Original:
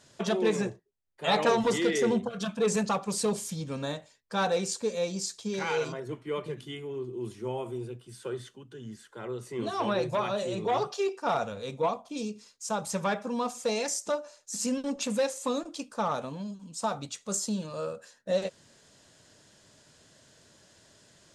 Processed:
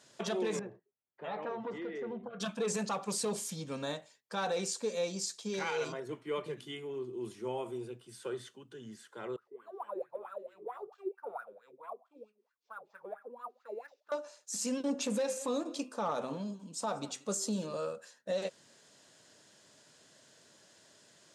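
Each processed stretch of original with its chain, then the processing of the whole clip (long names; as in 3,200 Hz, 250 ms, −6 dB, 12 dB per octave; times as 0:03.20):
0:00.59–0:02.40: low-pass filter 1,700 Hz + downward compressor 2.5 to 1, threshold −38 dBFS
0:09.36–0:14.12: LFO wah 4.5 Hz 360–1,600 Hz, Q 9.6 + linearly interpolated sample-rate reduction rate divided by 4×
0:14.80–0:17.77: parametric band 350 Hz +6 dB 1.9 octaves + hum removal 129.6 Hz, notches 22 + single-tap delay 186 ms −23 dB
whole clip: high-pass filter 110 Hz; low-shelf EQ 150 Hz −9.5 dB; brickwall limiter −23 dBFS; level −2 dB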